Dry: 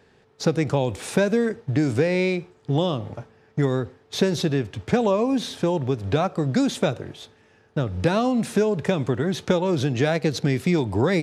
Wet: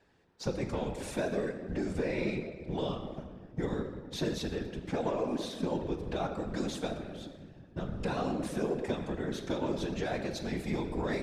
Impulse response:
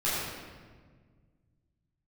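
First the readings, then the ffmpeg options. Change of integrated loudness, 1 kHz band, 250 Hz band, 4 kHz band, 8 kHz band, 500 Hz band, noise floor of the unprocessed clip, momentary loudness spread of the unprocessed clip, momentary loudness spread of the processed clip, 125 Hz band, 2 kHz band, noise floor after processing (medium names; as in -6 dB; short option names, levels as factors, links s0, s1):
-12.0 dB, -10.0 dB, -11.5 dB, -11.0 dB, -11.0 dB, -11.5 dB, -58 dBFS, 7 LU, 7 LU, -14.0 dB, -11.5 dB, -54 dBFS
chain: -filter_complex "[0:a]asoftclip=type=tanh:threshold=0.266,asplit=2[s0][s1];[1:a]atrim=start_sample=2205[s2];[s1][s2]afir=irnorm=-1:irlink=0,volume=0.188[s3];[s0][s3]amix=inputs=2:normalize=0,afftfilt=real='hypot(re,im)*cos(2*PI*random(0))':imag='hypot(re,im)*sin(2*PI*random(1))':win_size=512:overlap=0.75,adynamicequalizer=threshold=0.00708:dfrequency=110:dqfactor=1.1:tfrequency=110:tqfactor=1.1:attack=5:release=100:ratio=0.375:range=3.5:mode=cutabove:tftype=bell,volume=0.501"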